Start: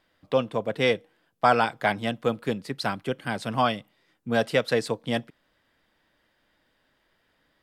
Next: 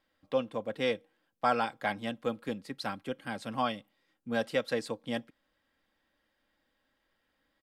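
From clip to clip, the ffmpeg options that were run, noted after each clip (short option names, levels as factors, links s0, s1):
-af "aecho=1:1:3.7:0.38,volume=0.376"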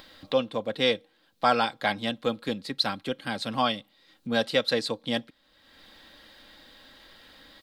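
-filter_complex "[0:a]equalizer=f=4000:w=2.3:g=12,asplit=2[s0][s1];[s1]acompressor=mode=upward:threshold=0.0282:ratio=2.5,volume=0.75[s2];[s0][s2]amix=inputs=2:normalize=0"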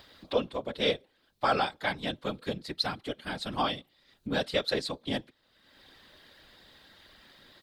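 -af "afftfilt=real='hypot(re,im)*cos(2*PI*random(0))':imag='hypot(re,im)*sin(2*PI*random(1))':win_size=512:overlap=0.75,volume=1.26"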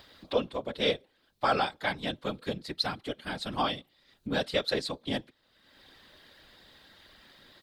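-af anull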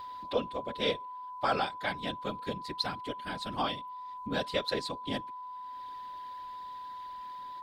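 -af "aeval=exprs='val(0)+0.0141*sin(2*PI*1000*n/s)':c=same,volume=0.708"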